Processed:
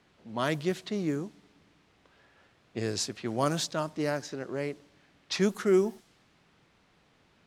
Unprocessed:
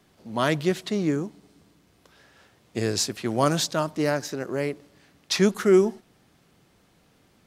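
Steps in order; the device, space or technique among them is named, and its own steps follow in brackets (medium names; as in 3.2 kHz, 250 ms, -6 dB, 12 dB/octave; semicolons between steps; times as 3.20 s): cassette deck with a dynamic noise filter (white noise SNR 28 dB; level-controlled noise filter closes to 2.9 kHz, open at -18 dBFS); trim -6 dB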